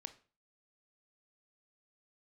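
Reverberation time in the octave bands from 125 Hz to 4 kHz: 0.45, 0.40, 0.40, 0.40, 0.35, 0.35 seconds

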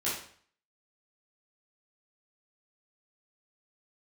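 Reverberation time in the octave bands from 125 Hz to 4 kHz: 0.60, 0.50, 0.50, 0.55, 0.50, 0.50 seconds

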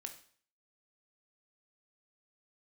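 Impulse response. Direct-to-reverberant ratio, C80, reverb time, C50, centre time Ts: 5.0 dB, 14.0 dB, 0.50 s, 10.5 dB, 12 ms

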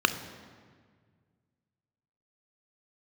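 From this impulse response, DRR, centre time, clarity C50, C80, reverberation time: 9.5 dB, 13 ms, 11.5 dB, 13.0 dB, 1.7 s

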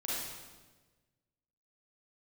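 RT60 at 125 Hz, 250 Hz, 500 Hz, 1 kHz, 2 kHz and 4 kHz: 1.8, 1.5, 1.4, 1.2, 1.1, 1.1 seconds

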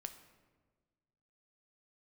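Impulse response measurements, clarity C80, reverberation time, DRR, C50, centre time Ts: 12.5 dB, 1.4 s, 7.5 dB, 11.0 dB, 12 ms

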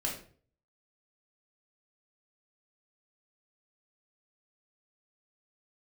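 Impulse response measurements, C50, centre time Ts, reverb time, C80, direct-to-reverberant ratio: 6.0 dB, 28 ms, 0.45 s, 10.5 dB, −2.5 dB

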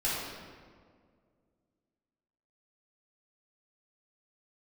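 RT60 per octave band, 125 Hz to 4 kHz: 2.4, 2.5, 2.2, 1.7, 1.4, 1.1 seconds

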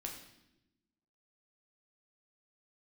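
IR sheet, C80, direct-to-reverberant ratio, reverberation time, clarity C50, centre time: 8.5 dB, 0.5 dB, 0.90 s, 6.0 dB, 31 ms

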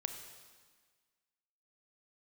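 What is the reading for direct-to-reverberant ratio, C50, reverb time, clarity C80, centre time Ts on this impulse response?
6.0 dB, 7.0 dB, 1.5 s, 8.5 dB, 28 ms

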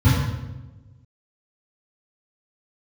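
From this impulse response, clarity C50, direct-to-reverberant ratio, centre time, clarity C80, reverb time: −1.0 dB, −12.0 dB, 83 ms, 1.5 dB, 1.1 s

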